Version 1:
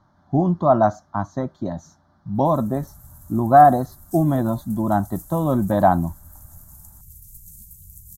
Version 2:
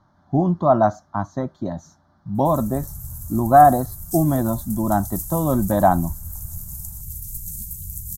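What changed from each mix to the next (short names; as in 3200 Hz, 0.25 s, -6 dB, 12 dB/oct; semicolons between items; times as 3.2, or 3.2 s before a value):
background +11.5 dB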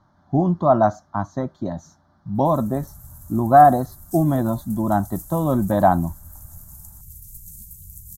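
background -8.5 dB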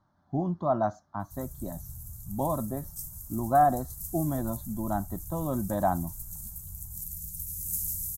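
speech -10.5 dB; background: entry -1.15 s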